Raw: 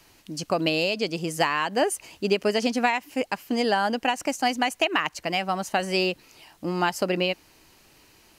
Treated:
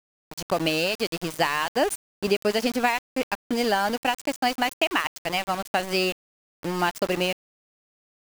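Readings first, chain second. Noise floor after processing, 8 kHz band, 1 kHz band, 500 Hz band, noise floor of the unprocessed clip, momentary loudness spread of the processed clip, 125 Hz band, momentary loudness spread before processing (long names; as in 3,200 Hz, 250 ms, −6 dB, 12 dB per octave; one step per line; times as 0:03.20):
below −85 dBFS, 0.0 dB, 0.0 dB, −0.5 dB, −57 dBFS, 7 LU, −1.0 dB, 7 LU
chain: centre clipping without the shift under −28.5 dBFS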